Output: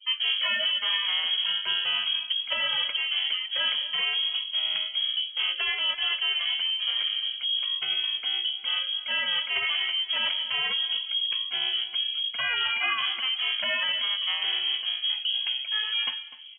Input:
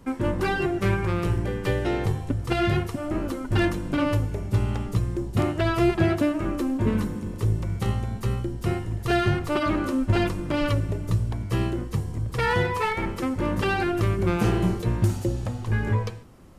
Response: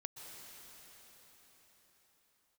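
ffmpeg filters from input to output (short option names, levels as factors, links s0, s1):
-filter_complex "[0:a]highpass=47,afreqshift=230,adynamicequalizer=threshold=0.0112:dfrequency=180:dqfactor=0.93:tfrequency=180:tqfactor=0.93:attack=5:release=100:ratio=0.375:range=2.5:mode=cutabove:tftype=bell,areverse,acompressor=threshold=0.0316:ratio=10,areverse,asubboost=boost=4.5:cutoff=140,lowpass=f=3100:t=q:w=0.5098,lowpass=f=3100:t=q:w=0.6013,lowpass=f=3100:t=q:w=0.9,lowpass=f=3100:t=q:w=2.563,afreqshift=-3600,bandreject=f=86.3:t=h:w=4,bandreject=f=172.6:t=h:w=4,bandreject=f=258.9:t=h:w=4,bandreject=f=345.2:t=h:w=4,bandreject=f=431.5:t=h:w=4,afftdn=nr=23:nf=-54,asplit=2[s0][s1];[s1]adelay=250,lowpass=f=2100:p=1,volume=0.2,asplit=2[s2][s3];[s3]adelay=250,lowpass=f=2100:p=1,volume=0.2[s4];[s0][s2][s4]amix=inputs=3:normalize=0,volume=2.37"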